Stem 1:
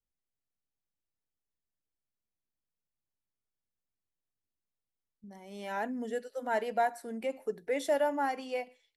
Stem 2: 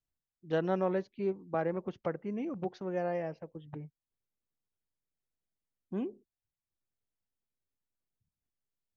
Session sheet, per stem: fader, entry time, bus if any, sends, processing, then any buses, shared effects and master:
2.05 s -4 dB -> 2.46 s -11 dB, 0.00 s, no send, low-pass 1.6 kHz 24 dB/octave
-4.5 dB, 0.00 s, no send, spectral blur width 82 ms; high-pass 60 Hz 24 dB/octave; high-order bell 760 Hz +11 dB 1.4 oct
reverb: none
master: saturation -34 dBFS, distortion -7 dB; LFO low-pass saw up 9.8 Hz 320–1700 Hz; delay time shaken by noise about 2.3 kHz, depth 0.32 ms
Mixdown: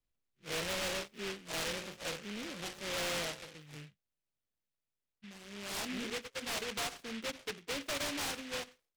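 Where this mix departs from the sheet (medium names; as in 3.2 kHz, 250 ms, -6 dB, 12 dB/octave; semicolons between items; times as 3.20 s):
stem 1 -4.0 dB -> +5.5 dB; master: missing LFO low-pass saw up 9.8 Hz 320–1700 Hz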